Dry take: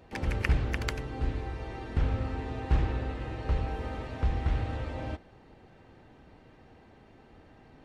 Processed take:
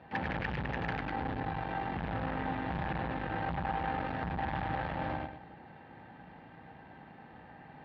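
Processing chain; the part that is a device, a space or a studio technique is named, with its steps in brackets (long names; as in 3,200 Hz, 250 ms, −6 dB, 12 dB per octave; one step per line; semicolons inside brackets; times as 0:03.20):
analogue delay pedal into a guitar amplifier (bucket-brigade delay 103 ms, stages 4,096, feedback 33%, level −4 dB; tube saturation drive 37 dB, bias 0.8; loudspeaker in its box 84–3,700 Hz, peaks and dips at 89 Hz −4 dB, 170 Hz +7 dB, 400 Hz −5 dB, 840 Hz +9 dB, 1,700 Hz +8 dB)
level +5 dB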